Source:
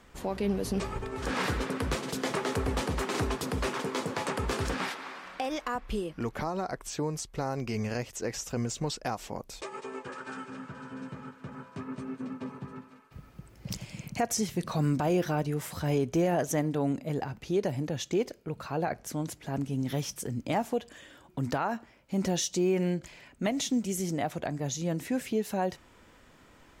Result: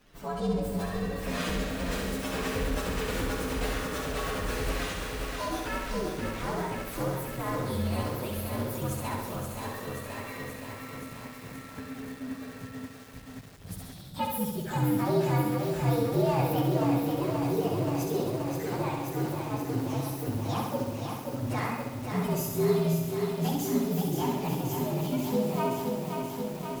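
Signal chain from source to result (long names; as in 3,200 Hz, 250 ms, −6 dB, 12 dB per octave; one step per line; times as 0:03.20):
partials spread apart or drawn together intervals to 122%
flutter between parallel walls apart 11.4 metres, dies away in 0.97 s
feedback echo at a low word length 528 ms, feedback 80%, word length 8 bits, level −5 dB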